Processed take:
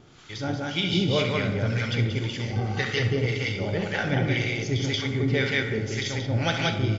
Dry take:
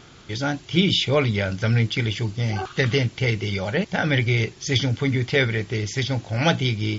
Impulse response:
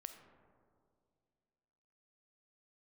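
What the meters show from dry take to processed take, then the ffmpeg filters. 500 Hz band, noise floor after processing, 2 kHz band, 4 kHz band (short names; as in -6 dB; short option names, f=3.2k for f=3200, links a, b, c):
-3.0 dB, -37 dBFS, -2.5 dB, -4.0 dB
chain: -filter_complex "[0:a]aecho=1:1:67.06|180.8:0.355|0.891,acrossover=split=840[a][b];[a]aeval=exprs='val(0)*(1-0.7/2+0.7/2*cos(2*PI*1.9*n/s))':c=same[c];[b]aeval=exprs='val(0)*(1-0.7/2-0.7/2*cos(2*PI*1.9*n/s))':c=same[d];[c][d]amix=inputs=2:normalize=0[e];[1:a]atrim=start_sample=2205[f];[e][f]afir=irnorm=-1:irlink=0,volume=2.5dB"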